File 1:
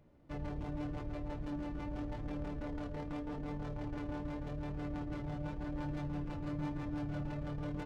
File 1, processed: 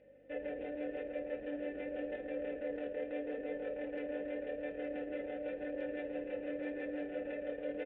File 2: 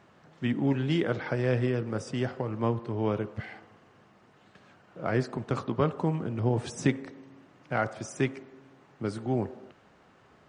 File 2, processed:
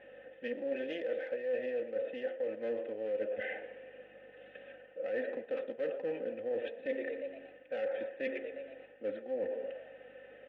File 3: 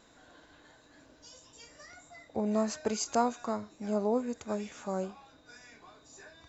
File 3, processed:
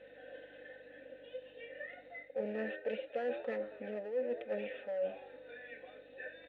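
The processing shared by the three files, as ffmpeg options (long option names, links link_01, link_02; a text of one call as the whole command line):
ffmpeg -i in.wav -filter_complex "[0:a]equalizer=frequency=140:width=2.7:gain=-12,aresample=8000,aresample=44100,aecho=1:1:3.9:0.74,asplit=2[link_01][link_02];[link_02]asplit=5[link_03][link_04][link_05][link_06][link_07];[link_03]adelay=118,afreqshift=98,volume=-20dB[link_08];[link_04]adelay=236,afreqshift=196,volume=-24.9dB[link_09];[link_05]adelay=354,afreqshift=294,volume=-29.8dB[link_10];[link_06]adelay=472,afreqshift=392,volume=-34.6dB[link_11];[link_07]adelay=590,afreqshift=490,volume=-39.5dB[link_12];[link_08][link_09][link_10][link_11][link_12]amix=inputs=5:normalize=0[link_13];[link_01][link_13]amix=inputs=2:normalize=0,aeval=exprs='val(0)+0.00141*(sin(2*PI*50*n/s)+sin(2*PI*2*50*n/s)/2+sin(2*PI*3*50*n/s)/3+sin(2*PI*4*50*n/s)/4+sin(2*PI*5*50*n/s)/5)':channel_layout=same,aeval=exprs='clip(val(0),-1,0.0266)':channel_layout=same,asplit=3[link_14][link_15][link_16];[link_14]bandpass=frequency=530:width_type=q:width=8,volume=0dB[link_17];[link_15]bandpass=frequency=1840:width_type=q:width=8,volume=-6dB[link_18];[link_16]bandpass=frequency=2480:width_type=q:width=8,volume=-9dB[link_19];[link_17][link_18][link_19]amix=inputs=3:normalize=0,areverse,acompressor=threshold=-49dB:ratio=5,areverse,volume=14.5dB" out.wav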